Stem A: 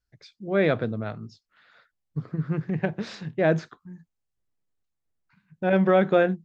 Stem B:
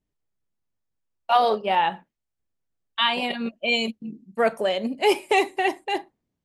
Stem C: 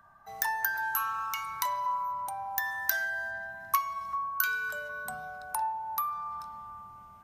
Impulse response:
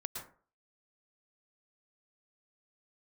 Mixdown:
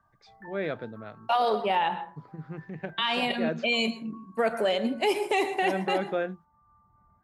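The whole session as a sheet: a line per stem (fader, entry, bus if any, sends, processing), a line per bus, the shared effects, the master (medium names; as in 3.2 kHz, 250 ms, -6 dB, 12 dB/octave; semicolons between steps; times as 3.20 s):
-8.5 dB, 0.00 s, no send, high-pass 210 Hz 6 dB/octave
-3.0 dB, 0.00 s, send -7.5 dB, none
-10.5 dB, 0.00 s, send -17.5 dB, elliptic low-pass 2 kHz; reverb removal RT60 0.64 s; bass shelf 270 Hz +10.5 dB; auto duck -13 dB, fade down 0.90 s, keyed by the first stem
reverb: on, RT60 0.45 s, pre-delay 102 ms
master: peak limiter -16 dBFS, peak gain reduction 8 dB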